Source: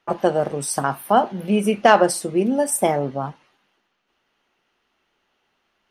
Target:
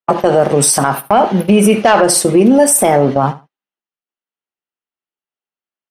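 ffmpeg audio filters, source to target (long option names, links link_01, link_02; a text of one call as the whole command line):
ffmpeg -i in.wav -filter_complex "[0:a]agate=range=-46dB:threshold=-29dB:ratio=16:detection=peak,lowshelf=frequency=82:gain=-7.5,asplit=2[link_01][link_02];[link_02]acompressor=threshold=-25dB:ratio=6,volume=-1dB[link_03];[link_01][link_03]amix=inputs=2:normalize=0,asoftclip=type=tanh:threshold=-4dB,asplit=2[link_04][link_05];[link_05]aecho=0:1:74|148:0.126|0.0214[link_06];[link_04][link_06]amix=inputs=2:normalize=0,alimiter=level_in=14.5dB:limit=-1dB:release=50:level=0:latency=1,volume=-1dB" out.wav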